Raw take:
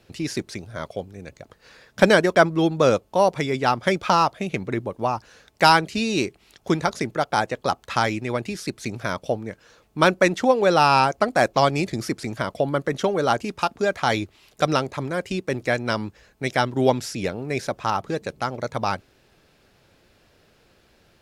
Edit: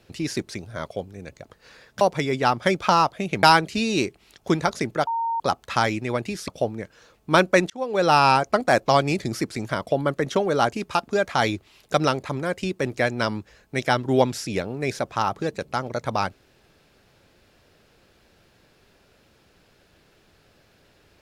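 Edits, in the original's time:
2.01–3.22 s: delete
4.64–5.63 s: delete
7.27–7.60 s: bleep 919 Hz -22 dBFS
8.68–9.16 s: delete
10.38–10.81 s: fade in

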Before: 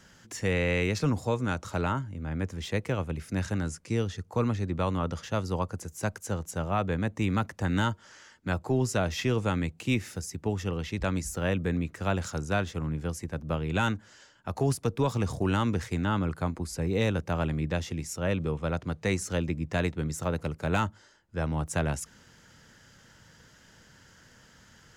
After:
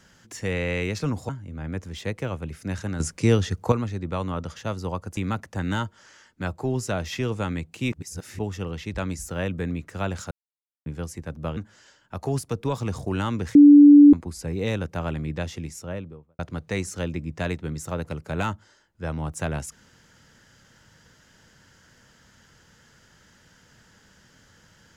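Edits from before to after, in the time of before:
1.29–1.96 s: delete
3.67–4.39 s: gain +9.5 dB
5.84–7.23 s: delete
9.98–10.45 s: reverse
12.37–12.92 s: mute
13.63–13.91 s: delete
15.89–16.47 s: bleep 290 Hz -6.5 dBFS
17.95–18.73 s: studio fade out

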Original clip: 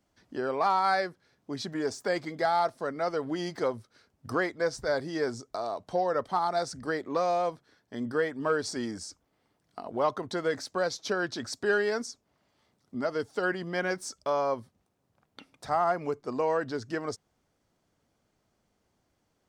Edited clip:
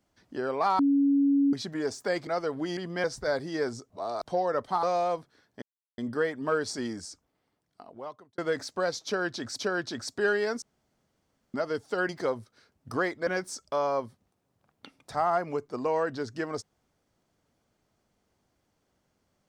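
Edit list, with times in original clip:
0.79–1.53 s: bleep 280 Hz -19.5 dBFS
2.27–2.97 s: delete
3.47–4.65 s: swap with 13.54–13.81 s
5.51–5.86 s: reverse
6.44–7.17 s: delete
7.96 s: insert silence 0.36 s
8.88–10.36 s: fade out
11.04–11.57 s: loop, 2 plays
12.07–12.99 s: room tone

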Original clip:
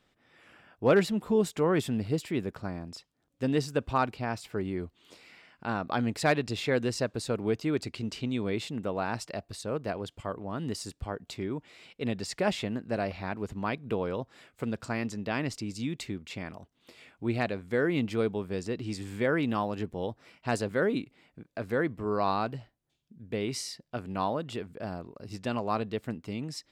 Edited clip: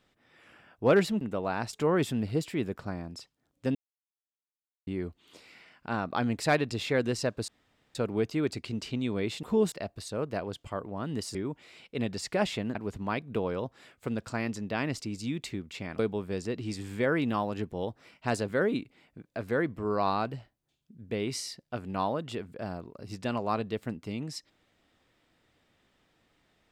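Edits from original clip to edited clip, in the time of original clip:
1.21–1.50 s: swap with 8.73–9.25 s
3.52–4.64 s: mute
7.25 s: insert room tone 0.47 s
10.88–11.41 s: delete
12.81–13.31 s: delete
16.55–18.20 s: delete

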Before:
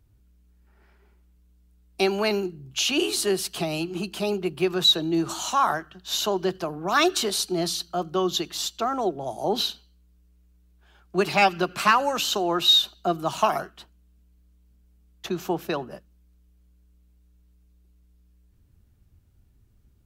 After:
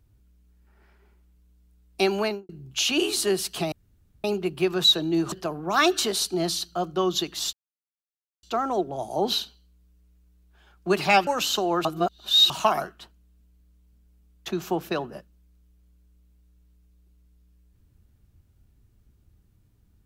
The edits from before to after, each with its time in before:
2.18–2.49 s: studio fade out
3.72–4.24 s: room tone
5.32–6.50 s: delete
8.71 s: insert silence 0.90 s
11.55–12.05 s: delete
12.63–13.28 s: reverse

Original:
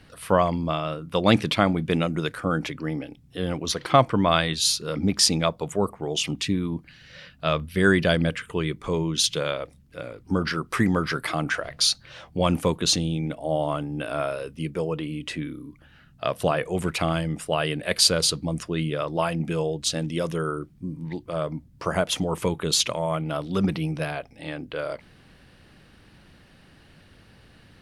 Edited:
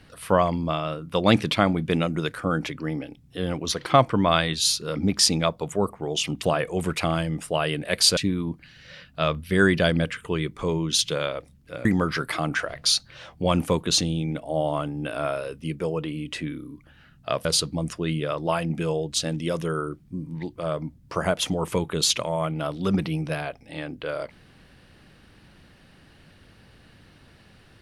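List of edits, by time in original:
10.10–10.80 s: delete
16.40–18.15 s: move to 6.42 s

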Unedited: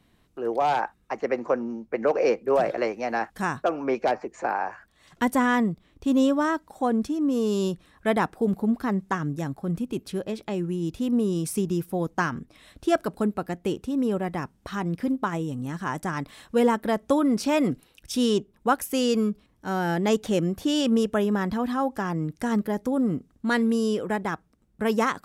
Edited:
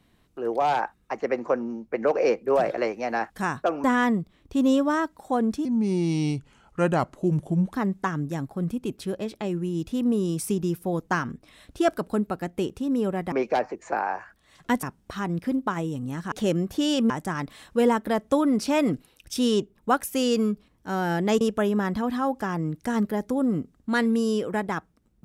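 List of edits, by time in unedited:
3.84–5.35 s: move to 14.39 s
7.16–8.81 s: speed 79%
20.19–20.97 s: move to 15.88 s

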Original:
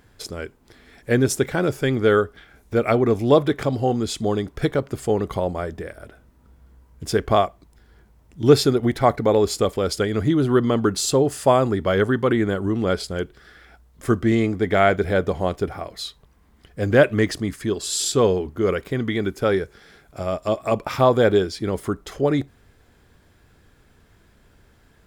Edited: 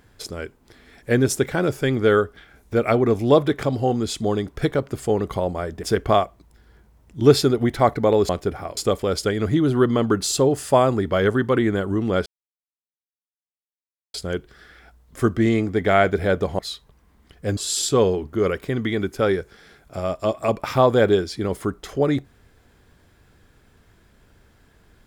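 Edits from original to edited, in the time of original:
5.83–7.05 s: delete
13.00 s: insert silence 1.88 s
15.45–15.93 s: move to 9.51 s
16.91–17.80 s: delete

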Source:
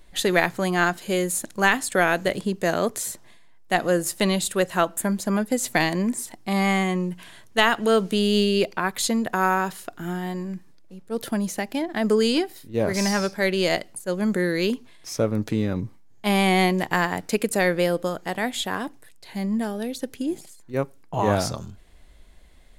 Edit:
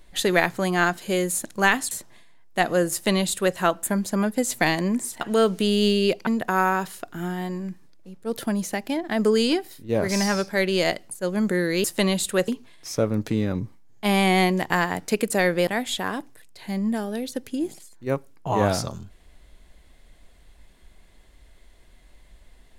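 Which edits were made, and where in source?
1.91–3.05 s: delete
4.06–4.70 s: copy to 14.69 s
6.35–7.73 s: delete
8.79–9.12 s: delete
17.88–18.34 s: delete

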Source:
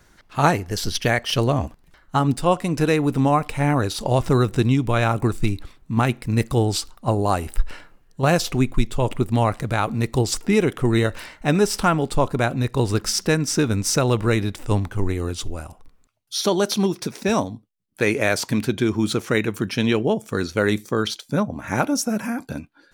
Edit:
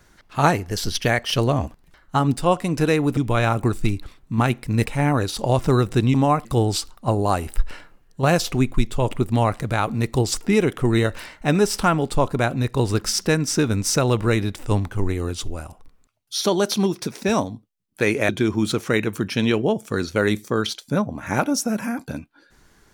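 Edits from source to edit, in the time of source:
3.17–3.48 s: swap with 4.76–6.45 s
18.29–18.70 s: delete

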